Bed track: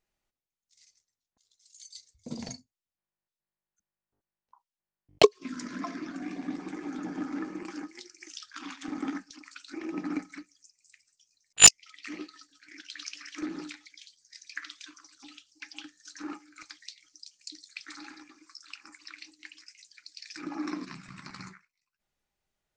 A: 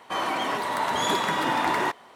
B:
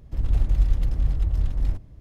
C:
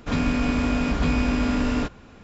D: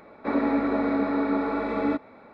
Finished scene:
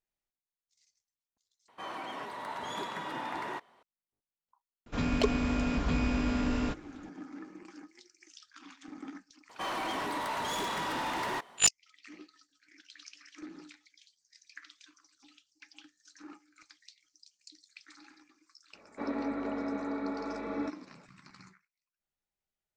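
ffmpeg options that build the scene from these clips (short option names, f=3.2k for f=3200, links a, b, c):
-filter_complex "[1:a]asplit=2[a][b];[0:a]volume=-10.5dB[c];[a]highshelf=f=6.9k:g=-8[d];[b]asoftclip=type=hard:threshold=-26dB[e];[c]asplit=2[f][g];[f]atrim=end=1.684[h];[d]atrim=end=2.15,asetpts=PTS-STARTPTS,volume=-13dB[i];[g]atrim=start=3.826[j];[3:a]atrim=end=2.23,asetpts=PTS-STARTPTS,volume=-7.5dB,afade=t=in:d=0.004:c=hsin,afade=t=out:st=2.226:d=0.004:c=hsin,adelay=4860[k];[e]atrim=end=2.15,asetpts=PTS-STARTPTS,volume=-5.5dB,afade=t=in:d=0.004:c=hsin,afade=t=out:st=2.146:d=0.004:c=hsin,adelay=9490[l];[4:a]atrim=end=2.33,asetpts=PTS-STARTPTS,volume=-10.5dB,afade=t=in:d=0.004:c=hsin,afade=t=out:st=2.326:d=0.004:c=hsin,adelay=18730[m];[h][i]acrossfade=d=0.004:c1=hsin:c2=hsin[n];[n][j]acrossfade=d=0.004:c1=hsin:c2=hsin[o];[o][k][l][m]amix=inputs=4:normalize=0"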